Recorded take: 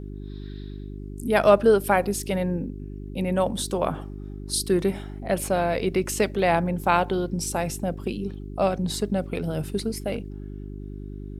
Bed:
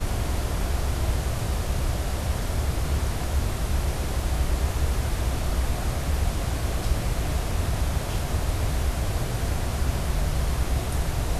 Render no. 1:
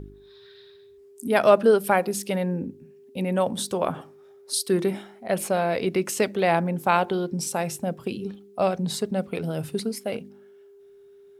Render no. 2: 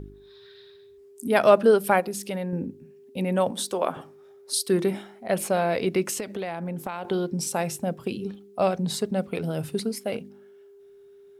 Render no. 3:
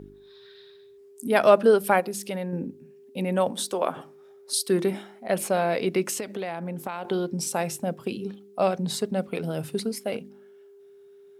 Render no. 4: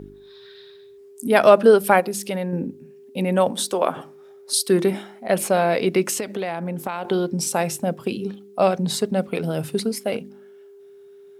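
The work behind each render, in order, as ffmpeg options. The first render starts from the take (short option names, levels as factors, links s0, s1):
-af "bandreject=f=50:t=h:w=4,bandreject=f=100:t=h:w=4,bandreject=f=150:t=h:w=4,bandreject=f=200:t=h:w=4,bandreject=f=250:t=h:w=4,bandreject=f=300:t=h:w=4,bandreject=f=350:t=h:w=4"
-filter_complex "[0:a]asettb=1/sr,asplit=3[s0][s1][s2];[s0]atrim=end=2.004[s3];[s1]atrim=start=2:end=2.53,asetpts=PTS-STARTPTS,afade=t=in:d=0.004:c=qsin,afade=t=out:st=0.526:d=0.004:c=qsin,acompressor=threshold=0.02:ratio=1.5:attack=3.2:release=140:knee=1:detection=peak[s4];[s2]atrim=start=2.526[s5];[s3][s4]acrossfade=d=0.004:c1=hsin:c2=qsin[s6];[s6][s5]acrossfade=d=0.004:c1=qsin:c2=hsin,asettb=1/sr,asplit=3[s7][s8][s9];[s7]atrim=end=3.514[s10];[s8]atrim=start=3.51:end=3.97,asetpts=PTS-STARTPTS,afade=t=in:d=0.004:c=qsin,afade=t=out:st=0.456:d=0.004:c=qsin,highpass=280[s11];[s9]atrim=start=3.966[s12];[s10][s11]acrossfade=d=0.004:c1=hsin:c2=qsin[s13];[s13][s12]acrossfade=d=0.004:c1=qsin:c2=hsin,asettb=1/sr,asplit=3[s14][s15][s16];[s14]atrim=end=6.174[s17];[s15]atrim=start=6.17:end=7.05,asetpts=PTS-STARTPTS,afade=t=in:d=0.004:c=qsin,afade=t=out:st=0.876:d=0.004:c=qsin,acompressor=threshold=0.0447:ratio=12:attack=3.2:release=140:knee=1:detection=peak[s18];[s16]atrim=start=7.046[s19];[s17][s18]acrossfade=d=0.004:c1=hsin:c2=qsin[s20];[s20][s19]acrossfade=d=0.004:c1=qsin:c2=hsin"
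-af "highpass=54,equalizer=f=75:w=1.4:g=-11"
-af "volume=1.78,alimiter=limit=0.891:level=0:latency=1"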